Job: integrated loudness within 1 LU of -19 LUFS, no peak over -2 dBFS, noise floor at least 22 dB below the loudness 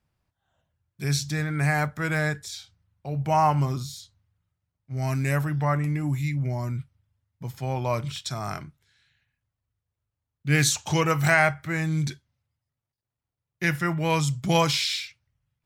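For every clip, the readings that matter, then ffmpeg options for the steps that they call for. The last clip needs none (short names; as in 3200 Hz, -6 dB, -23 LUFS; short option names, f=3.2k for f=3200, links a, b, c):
loudness -25.5 LUFS; peak -7.0 dBFS; loudness target -19.0 LUFS
-> -af "volume=6.5dB,alimiter=limit=-2dB:level=0:latency=1"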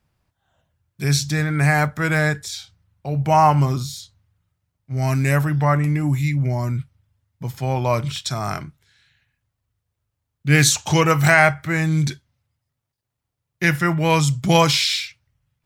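loudness -19.0 LUFS; peak -2.0 dBFS; noise floor -80 dBFS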